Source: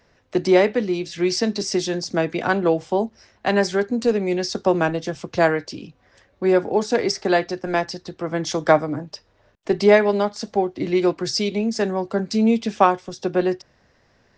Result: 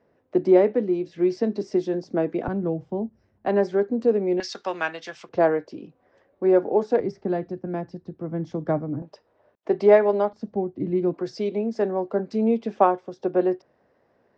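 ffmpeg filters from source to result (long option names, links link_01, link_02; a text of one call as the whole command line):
ffmpeg -i in.wav -af "asetnsamples=nb_out_samples=441:pad=0,asendcmd='2.48 bandpass f 140;3.46 bandpass f 400;4.4 bandpass f 2100;5.29 bandpass f 470;7 bandpass f 170;9.02 bandpass f 570;10.33 bandpass f 180;11.14 bandpass f 490',bandpass=frequency=370:width_type=q:width=0.87:csg=0" out.wav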